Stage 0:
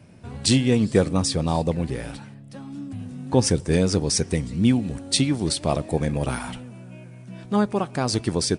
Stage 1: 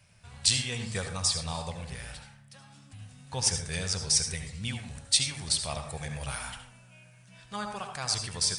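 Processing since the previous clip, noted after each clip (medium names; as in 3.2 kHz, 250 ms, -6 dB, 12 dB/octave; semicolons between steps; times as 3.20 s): amplifier tone stack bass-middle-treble 10-0-10; on a send at -5 dB: reverberation RT60 0.50 s, pre-delay 63 ms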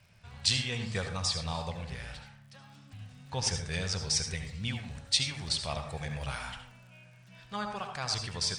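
low-pass 5.2 kHz 12 dB/octave; crackle 63 per s -52 dBFS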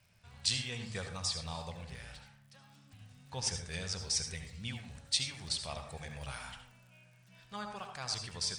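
treble shelf 7.7 kHz +8.5 dB; hum notches 50/100/150 Hz; trim -6.5 dB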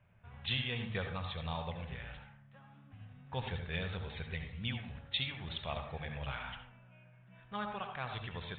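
resampled via 8 kHz; level-controlled noise filter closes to 1.5 kHz, open at -35.5 dBFS; trim +3 dB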